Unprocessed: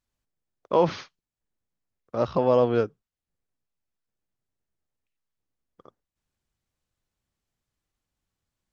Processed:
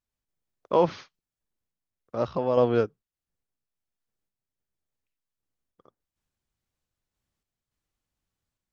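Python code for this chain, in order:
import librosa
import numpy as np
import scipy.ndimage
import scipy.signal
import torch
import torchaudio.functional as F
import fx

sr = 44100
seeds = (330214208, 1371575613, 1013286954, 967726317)

y = fx.tremolo_random(x, sr, seeds[0], hz=3.5, depth_pct=55)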